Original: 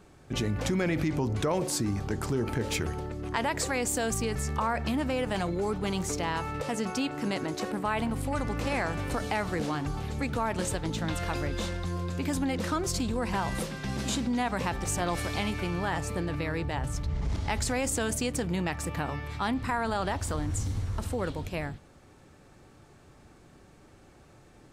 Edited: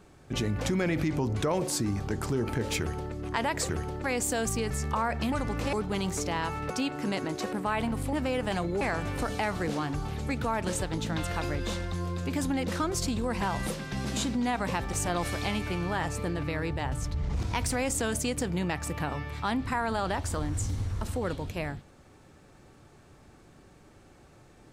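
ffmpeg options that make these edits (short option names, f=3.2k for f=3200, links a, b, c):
-filter_complex "[0:a]asplit=10[a][b][c][d][e][f][g][h][i][j];[a]atrim=end=3.692[k];[b]atrim=start=2.788:end=3.142[l];[c]atrim=start=3.688:end=4.972[m];[d]atrim=start=8.318:end=8.732[n];[e]atrim=start=5.648:end=6.622[o];[f]atrim=start=6.888:end=8.322[p];[g]atrim=start=4.968:end=5.652[q];[h]atrim=start=8.728:end=17.264[r];[i]atrim=start=17.26:end=17.69,asetpts=PTS-STARTPTS,asetrate=49833,aresample=44100,atrim=end_sample=16781,asetpts=PTS-STARTPTS[s];[j]atrim=start=17.686[t];[k][l]acrossfade=d=0.004:c1=hsin:c2=hsin[u];[u][m]acrossfade=d=0.004:c1=hsin:c2=hsin[v];[v][n]acrossfade=d=0.004:c1=hsin:c2=hsin[w];[w][o]acrossfade=d=0.004:c1=hsin:c2=hsin[x];[x][p]acrossfade=d=0.004:c1=hsin:c2=hsin[y];[y][q]acrossfade=d=0.004:c1=hsin:c2=hsin[z];[z][r]acrossfade=d=0.004:c1=hsin:c2=hsin[aa];[aa][s]acrossfade=d=0.004:c1=hsin:c2=hsin[ab];[ab][t]acrossfade=d=0.004:c1=hsin:c2=hsin"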